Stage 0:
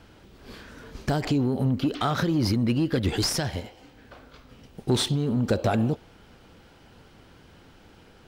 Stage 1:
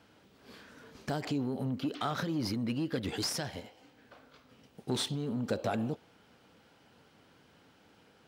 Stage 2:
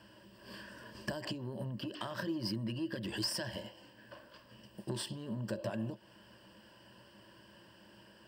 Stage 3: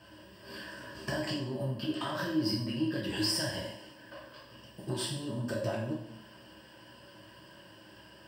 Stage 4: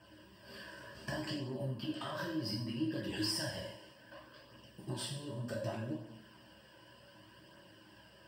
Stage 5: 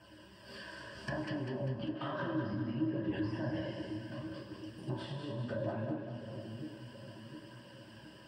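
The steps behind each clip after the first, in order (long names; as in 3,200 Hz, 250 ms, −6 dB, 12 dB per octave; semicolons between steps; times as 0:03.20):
Bessel high-pass filter 160 Hz, order 2; notch filter 360 Hz, Q 12; level −7.5 dB
downward compressor 6 to 1, threshold −38 dBFS, peak gain reduction 11 dB; EQ curve with evenly spaced ripples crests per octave 1.3, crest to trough 14 dB; level +1 dB
coupled-rooms reverb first 0.59 s, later 1.6 s, DRR −4.5 dB
flanger 0.66 Hz, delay 0.1 ms, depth 2 ms, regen −53%; level −1.5 dB
treble cut that deepens with the level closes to 1,200 Hz, closed at −34.5 dBFS; echo with a time of its own for lows and highs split 510 Hz, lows 714 ms, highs 198 ms, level −6 dB; level +2 dB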